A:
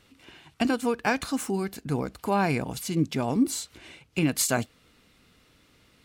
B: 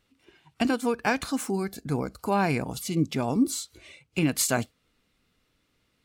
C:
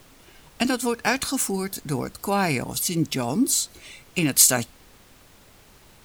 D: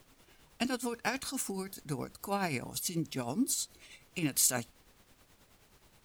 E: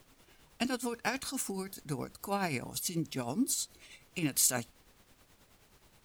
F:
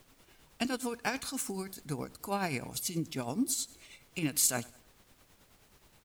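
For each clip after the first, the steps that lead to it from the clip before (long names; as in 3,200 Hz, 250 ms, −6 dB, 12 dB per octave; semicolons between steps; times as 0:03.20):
noise reduction from a noise print of the clip's start 11 dB
high-shelf EQ 3,500 Hz +12 dB; background noise pink −53 dBFS; level +1 dB
amplitude tremolo 9.4 Hz, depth 53%; level −8.5 dB
no processing that can be heard
repeating echo 99 ms, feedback 44%, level −23 dB; background noise white −74 dBFS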